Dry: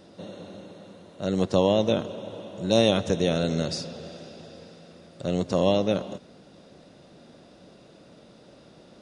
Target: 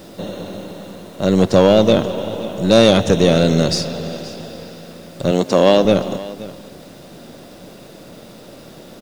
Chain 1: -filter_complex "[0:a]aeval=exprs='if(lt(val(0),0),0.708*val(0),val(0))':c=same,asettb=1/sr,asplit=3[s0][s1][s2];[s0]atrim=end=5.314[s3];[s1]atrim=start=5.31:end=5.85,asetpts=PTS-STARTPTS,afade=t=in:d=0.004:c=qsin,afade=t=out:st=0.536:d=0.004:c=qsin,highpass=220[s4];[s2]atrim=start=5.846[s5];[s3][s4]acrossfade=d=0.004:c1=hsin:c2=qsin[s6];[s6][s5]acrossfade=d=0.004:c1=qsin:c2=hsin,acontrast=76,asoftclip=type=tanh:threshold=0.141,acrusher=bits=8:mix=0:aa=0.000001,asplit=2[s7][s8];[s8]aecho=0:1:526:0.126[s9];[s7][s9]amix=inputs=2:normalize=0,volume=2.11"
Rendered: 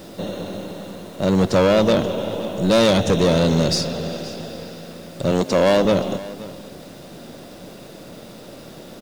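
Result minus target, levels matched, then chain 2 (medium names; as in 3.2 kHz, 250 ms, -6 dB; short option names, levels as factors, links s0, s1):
saturation: distortion +11 dB
-filter_complex "[0:a]aeval=exprs='if(lt(val(0),0),0.708*val(0),val(0))':c=same,asettb=1/sr,asplit=3[s0][s1][s2];[s0]atrim=end=5.314[s3];[s1]atrim=start=5.31:end=5.85,asetpts=PTS-STARTPTS,afade=t=in:d=0.004:c=qsin,afade=t=out:st=0.536:d=0.004:c=qsin,highpass=220[s4];[s2]atrim=start=5.846[s5];[s3][s4]acrossfade=d=0.004:c1=hsin:c2=qsin[s6];[s6][s5]acrossfade=d=0.004:c1=qsin:c2=hsin,acontrast=76,asoftclip=type=tanh:threshold=0.447,acrusher=bits=8:mix=0:aa=0.000001,asplit=2[s7][s8];[s8]aecho=0:1:526:0.126[s9];[s7][s9]amix=inputs=2:normalize=0,volume=2.11"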